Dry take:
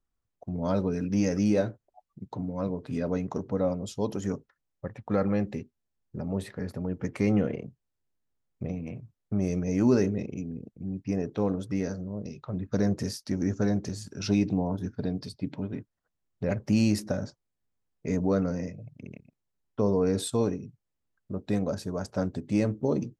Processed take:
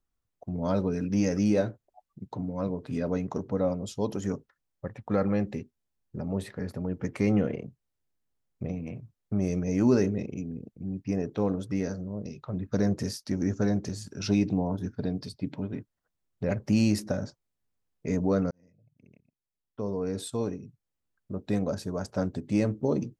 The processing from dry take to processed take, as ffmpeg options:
-filter_complex "[0:a]asplit=2[a][b];[a]atrim=end=18.51,asetpts=PTS-STARTPTS,afade=t=out:st=18.506:d=0.004:c=hsin[c];[b]atrim=start=18.51,asetpts=PTS-STARTPTS,afade=t=in:d=3.11[d];[c][d]concat=n=2:v=0:a=1"

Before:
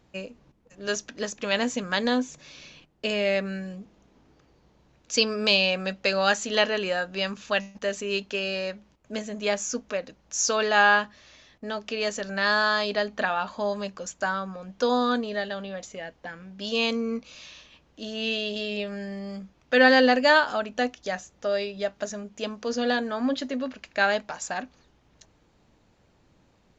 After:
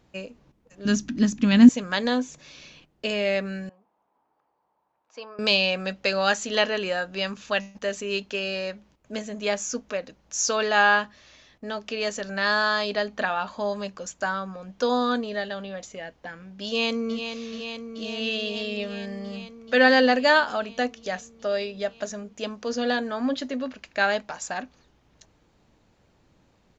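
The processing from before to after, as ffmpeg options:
-filter_complex "[0:a]asettb=1/sr,asplit=3[a][b][c];[a]atrim=end=0.854[d];[b]atrim=start=0.85:end=1.69,asetpts=PTS-STARTPTS,afade=t=in:d=0.004:c=qsin,afade=t=out:st=0.836:d=0.004:c=qsin,lowshelf=f=350:t=q:w=3:g=11.5[e];[c]atrim=start=1.686[f];[d][e]acrossfade=d=0.004:c1=hsin:c2=qsin[g];[g][f]acrossfade=d=0.004:c1=qsin:c2=hsin,asettb=1/sr,asplit=3[h][i][j];[h]atrim=end=3.694[k];[i]atrim=start=3.69:end=5.39,asetpts=PTS-STARTPTS,afade=t=in:d=0.004:c=qsin,afade=t=out:st=1.696:d=0.004:c=qsin,bandpass=f=910:t=q:w=3.5[l];[j]atrim=start=5.386[m];[k][l]acrossfade=d=0.004:c1=hsin:c2=qsin[n];[n][m]acrossfade=d=0.004:c1=qsin:c2=hsin,asplit=2[o][p];[p]afade=t=in:st=16.66:d=0.01,afade=t=out:st=17.17:d=0.01,aecho=0:1:430|860|1290|1720|2150|2580|3010|3440|3870|4300|4730|5160:0.398107|0.318486|0.254789|0.203831|0.163065|0.130452|0.104361|0.0834891|0.0667913|0.053433|0.0427464|0.0341971[q];[o][q]amix=inputs=2:normalize=0"

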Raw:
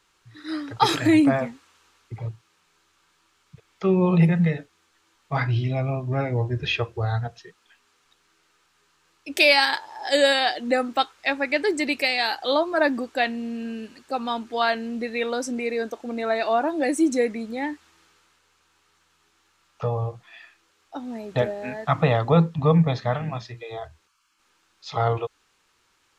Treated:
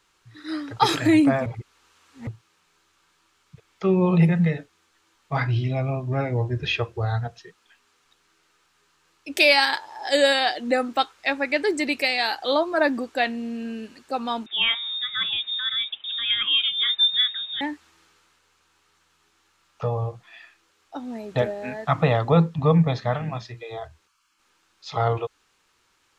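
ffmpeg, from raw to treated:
-filter_complex "[0:a]asettb=1/sr,asplit=3[a][b][c];[a]atrim=end=14.464[d];[b]atrim=start=14.46:end=17.61,asetpts=PTS-STARTPTS,afade=t=in:d=0.004:c=qsin,afade=t=out:st=3.146:d=0.004:c=qsin,lowpass=f=3.3k:t=q:w=0.5098,lowpass=f=3.3k:t=q:w=0.6013,lowpass=f=3.3k:t=q:w=0.9,lowpass=f=3.3k:t=q:w=2.563,afreqshift=-3900[e];[c]atrim=start=17.606[f];[d][e]acrossfade=d=0.004:c1=hsin:c2=qsin[g];[g][f]acrossfade=d=0.004:c1=qsin:c2=hsin,asplit=3[h][i][j];[h]atrim=end=1.462[k];[i]atrim=start=1.458:end=2.272,asetpts=PTS-STARTPTS,areverse[l];[j]atrim=start=2.268[m];[k][l]acrossfade=d=0.004:c1=hsin:c2=hsin[n];[n][m]acrossfade=d=0.004:c1=hsin:c2=hsin"

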